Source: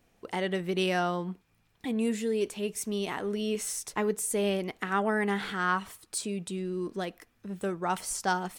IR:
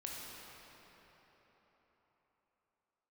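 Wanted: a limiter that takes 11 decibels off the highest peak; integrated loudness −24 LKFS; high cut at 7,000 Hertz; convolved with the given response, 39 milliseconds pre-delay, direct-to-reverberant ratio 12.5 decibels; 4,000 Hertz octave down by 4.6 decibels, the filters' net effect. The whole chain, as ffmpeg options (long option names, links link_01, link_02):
-filter_complex "[0:a]lowpass=7000,equalizer=frequency=4000:width_type=o:gain=-6.5,alimiter=level_in=3dB:limit=-24dB:level=0:latency=1,volume=-3dB,asplit=2[link_01][link_02];[1:a]atrim=start_sample=2205,adelay=39[link_03];[link_02][link_03]afir=irnorm=-1:irlink=0,volume=-12dB[link_04];[link_01][link_04]amix=inputs=2:normalize=0,volume=12dB"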